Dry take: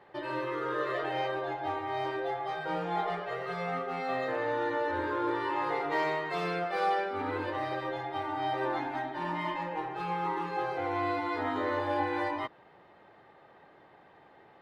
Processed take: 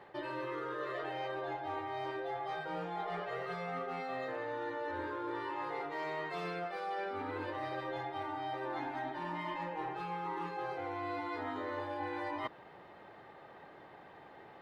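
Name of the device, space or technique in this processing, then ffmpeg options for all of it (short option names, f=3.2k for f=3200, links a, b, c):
compression on the reversed sound: -af "areverse,acompressor=threshold=-39dB:ratio=10,areverse,volume=3dB"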